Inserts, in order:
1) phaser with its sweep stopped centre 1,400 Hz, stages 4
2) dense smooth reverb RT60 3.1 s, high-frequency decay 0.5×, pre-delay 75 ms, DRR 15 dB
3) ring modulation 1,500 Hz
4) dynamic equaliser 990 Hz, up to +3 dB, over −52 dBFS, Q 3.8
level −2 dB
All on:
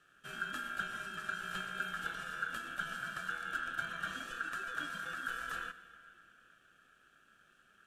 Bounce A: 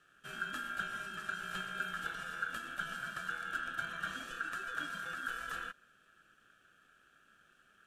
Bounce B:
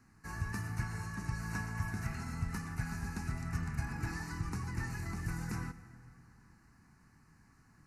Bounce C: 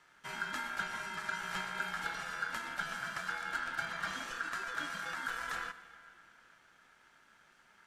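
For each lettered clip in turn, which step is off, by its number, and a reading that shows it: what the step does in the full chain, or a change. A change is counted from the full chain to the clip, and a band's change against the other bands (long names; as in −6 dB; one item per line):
2, change in momentary loudness spread −1 LU
3, change in crest factor −2.5 dB
1, 8 kHz band +2.5 dB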